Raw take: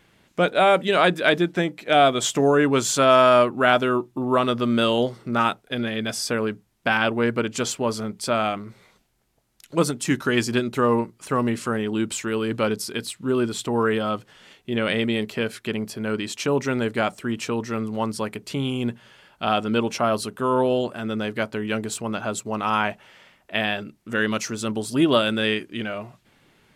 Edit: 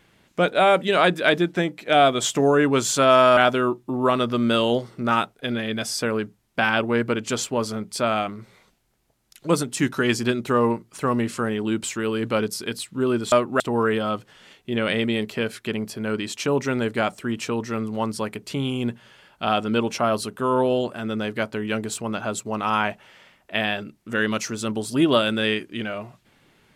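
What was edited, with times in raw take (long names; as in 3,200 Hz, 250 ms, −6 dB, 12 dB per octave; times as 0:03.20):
0:03.37–0:03.65: move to 0:13.60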